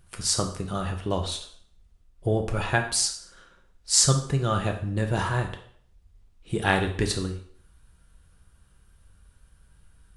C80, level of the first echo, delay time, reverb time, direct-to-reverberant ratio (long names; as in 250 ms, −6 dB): 13.0 dB, no echo audible, no echo audible, 0.60 s, 3.5 dB